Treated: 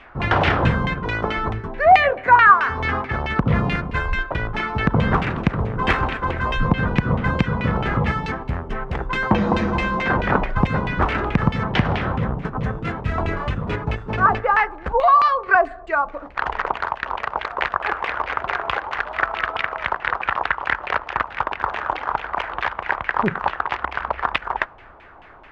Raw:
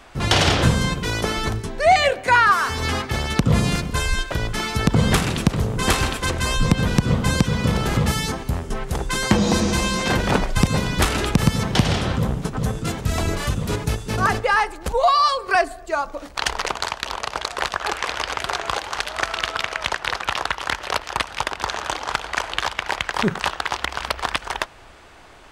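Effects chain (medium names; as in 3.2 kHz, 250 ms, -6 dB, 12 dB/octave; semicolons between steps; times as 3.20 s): LFO low-pass saw down 4.6 Hz 840–2600 Hz; trim -1.5 dB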